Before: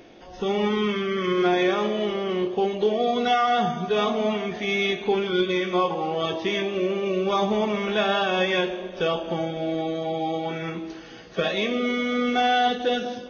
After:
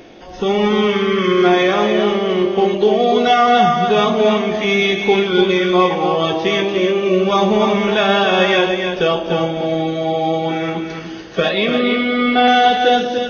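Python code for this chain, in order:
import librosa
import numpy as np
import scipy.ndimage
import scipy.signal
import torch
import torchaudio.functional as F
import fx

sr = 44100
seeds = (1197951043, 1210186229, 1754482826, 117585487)

y = fx.steep_lowpass(x, sr, hz=5000.0, slope=72, at=(11.49, 12.48))
y = y + 10.0 ** (-6.0 / 20.0) * np.pad(y, (int(293 * sr / 1000.0), 0))[:len(y)]
y = y * 10.0 ** (8.0 / 20.0)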